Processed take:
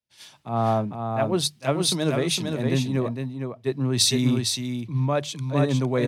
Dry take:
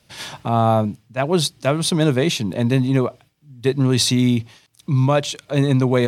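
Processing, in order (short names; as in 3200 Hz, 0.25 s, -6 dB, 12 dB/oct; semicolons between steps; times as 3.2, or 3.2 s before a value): notches 50/100/150 Hz; on a send: echo 0.458 s -3.5 dB; on the sum: three-band expander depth 70%; gain -6.5 dB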